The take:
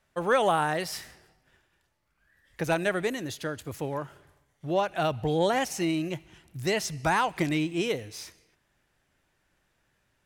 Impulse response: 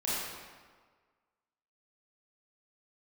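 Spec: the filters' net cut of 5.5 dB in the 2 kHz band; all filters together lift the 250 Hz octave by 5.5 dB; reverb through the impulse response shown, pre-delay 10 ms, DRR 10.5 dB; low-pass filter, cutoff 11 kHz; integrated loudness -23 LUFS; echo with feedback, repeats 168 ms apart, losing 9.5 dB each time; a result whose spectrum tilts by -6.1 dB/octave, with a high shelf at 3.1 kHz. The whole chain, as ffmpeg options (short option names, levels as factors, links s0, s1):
-filter_complex "[0:a]lowpass=11000,equalizer=f=250:t=o:g=8.5,equalizer=f=2000:t=o:g=-5,highshelf=f=3100:g=-7.5,aecho=1:1:168|336|504|672:0.335|0.111|0.0365|0.012,asplit=2[s0][s1];[1:a]atrim=start_sample=2205,adelay=10[s2];[s1][s2]afir=irnorm=-1:irlink=0,volume=0.126[s3];[s0][s3]amix=inputs=2:normalize=0,volume=1.41"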